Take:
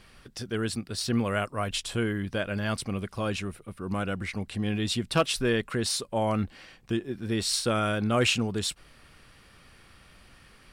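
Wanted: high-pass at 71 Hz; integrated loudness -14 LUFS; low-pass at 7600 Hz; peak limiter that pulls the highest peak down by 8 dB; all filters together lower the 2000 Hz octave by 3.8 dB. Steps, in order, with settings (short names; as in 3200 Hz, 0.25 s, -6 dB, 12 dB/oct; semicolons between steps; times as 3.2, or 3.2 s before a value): HPF 71 Hz; LPF 7600 Hz; bell 2000 Hz -5.5 dB; gain +17.5 dB; limiter -2.5 dBFS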